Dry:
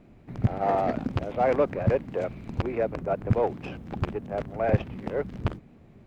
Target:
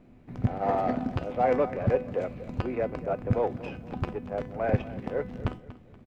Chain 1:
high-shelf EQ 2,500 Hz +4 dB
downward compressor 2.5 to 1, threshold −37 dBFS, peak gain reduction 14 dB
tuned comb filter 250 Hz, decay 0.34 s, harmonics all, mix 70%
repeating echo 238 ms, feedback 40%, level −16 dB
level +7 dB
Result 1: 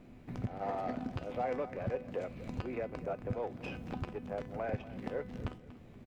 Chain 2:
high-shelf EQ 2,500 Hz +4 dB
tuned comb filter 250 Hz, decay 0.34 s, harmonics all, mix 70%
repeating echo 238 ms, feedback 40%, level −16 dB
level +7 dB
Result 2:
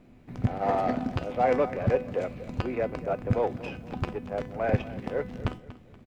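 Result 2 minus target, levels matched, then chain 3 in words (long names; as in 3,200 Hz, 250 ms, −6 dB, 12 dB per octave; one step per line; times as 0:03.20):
4,000 Hz band +4.0 dB
high-shelf EQ 2,500 Hz −2.5 dB
tuned comb filter 250 Hz, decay 0.34 s, harmonics all, mix 70%
repeating echo 238 ms, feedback 40%, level −16 dB
level +7 dB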